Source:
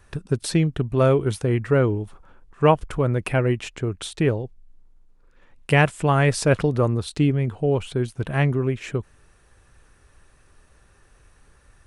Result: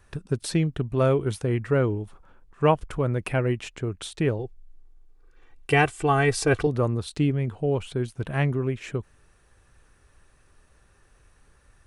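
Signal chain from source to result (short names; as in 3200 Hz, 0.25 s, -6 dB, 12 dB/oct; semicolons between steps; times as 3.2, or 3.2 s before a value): 4.39–6.67 comb 2.6 ms, depth 79%; gain -3.5 dB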